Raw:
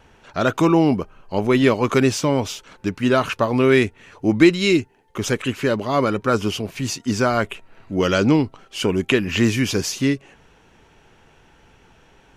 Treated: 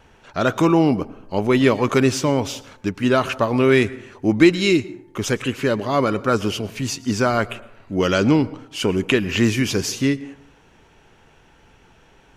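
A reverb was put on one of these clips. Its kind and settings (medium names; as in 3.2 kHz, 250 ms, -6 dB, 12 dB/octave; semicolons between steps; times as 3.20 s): plate-style reverb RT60 0.73 s, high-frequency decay 0.45×, pre-delay 95 ms, DRR 18.5 dB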